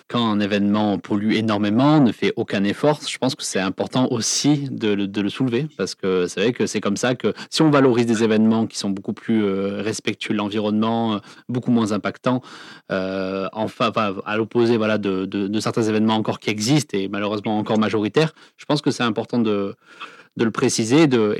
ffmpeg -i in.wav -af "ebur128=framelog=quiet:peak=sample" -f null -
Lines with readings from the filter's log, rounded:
Integrated loudness:
  I:         -20.5 LUFS
  Threshold: -30.7 LUFS
Loudness range:
  LRA:         3.5 LU
  Threshold: -40.9 LUFS
  LRA low:   -22.8 LUFS
  LRA high:  -19.2 LUFS
Sample peak:
  Peak:       -2.7 dBFS